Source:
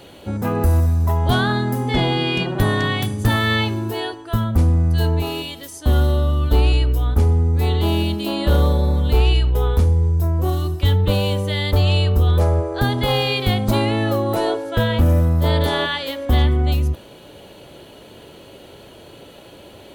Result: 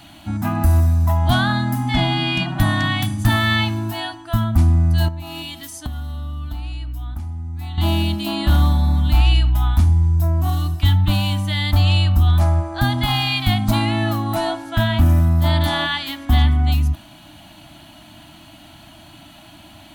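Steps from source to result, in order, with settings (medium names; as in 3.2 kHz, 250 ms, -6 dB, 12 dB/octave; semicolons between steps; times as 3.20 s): elliptic band-stop 320–640 Hz, stop band 40 dB; 5.08–7.78 s: compression 10:1, threshold -27 dBFS, peak gain reduction 15.5 dB; trim +1.5 dB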